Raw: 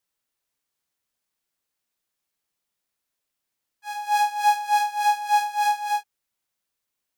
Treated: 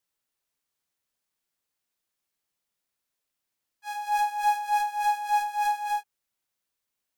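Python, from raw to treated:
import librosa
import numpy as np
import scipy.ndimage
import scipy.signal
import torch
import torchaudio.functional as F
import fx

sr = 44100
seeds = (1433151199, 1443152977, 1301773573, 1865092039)

p1 = fx.dynamic_eq(x, sr, hz=4700.0, q=1.1, threshold_db=-42.0, ratio=4.0, max_db=-5)
p2 = np.clip(p1, -10.0 ** (-26.5 / 20.0), 10.0 ** (-26.5 / 20.0))
p3 = p1 + (p2 * 10.0 ** (-5.5 / 20.0))
y = p3 * 10.0 ** (-5.5 / 20.0)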